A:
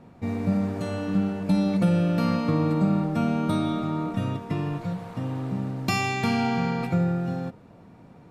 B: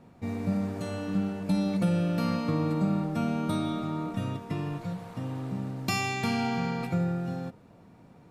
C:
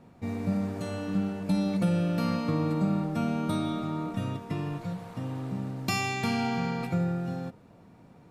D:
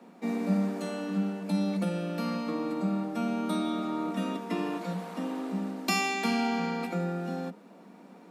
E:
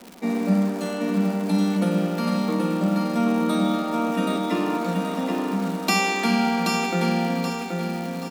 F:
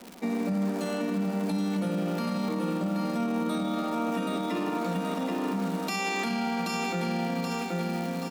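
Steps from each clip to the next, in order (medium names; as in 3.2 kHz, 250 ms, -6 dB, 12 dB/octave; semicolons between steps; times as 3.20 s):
treble shelf 4.7 kHz +5.5 dB; trim -4.5 dB
no audible change
steep high-pass 180 Hz 96 dB/octave; gain riding 2 s
crackle 260 per s -38 dBFS; on a send: feedback delay 778 ms, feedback 40%, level -4 dB; on the sum: trim +6.5 dB
peak limiter -19.5 dBFS, peak gain reduction 11 dB; trim -2 dB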